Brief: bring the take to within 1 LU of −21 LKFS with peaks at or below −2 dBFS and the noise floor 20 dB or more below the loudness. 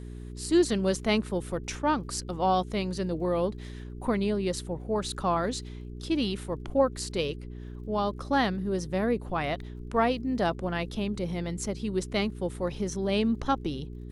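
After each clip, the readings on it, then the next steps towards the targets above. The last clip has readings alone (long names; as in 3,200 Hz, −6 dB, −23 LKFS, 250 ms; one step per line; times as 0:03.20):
crackle rate 41 per second; mains hum 60 Hz; hum harmonics up to 420 Hz; level of the hum −37 dBFS; integrated loudness −29.5 LKFS; sample peak −12.0 dBFS; target loudness −21.0 LKFS
→ click removal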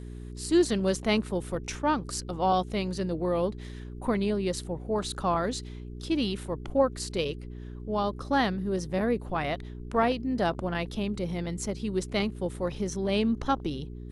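crackle rate 0.071 per second; mains hum 60 Hz; hum harmonics up to 420 Hz; level of the hum −37 dBFS
→ hum removal 60 Hz, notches 7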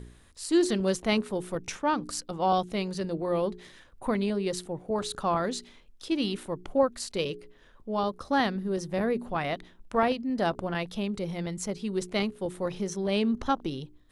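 mains hum none found; integrated loudness −29.5 LKFS; sample peak −12.0 dBFS; target loudness −21.0 LKFS
→ level +8.5 dB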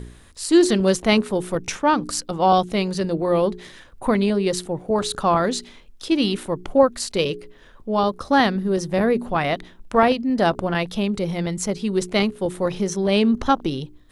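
integrated loudness −21.0 LKFS; sample peak −3.5 dBFS; background noise floor −48 dBFS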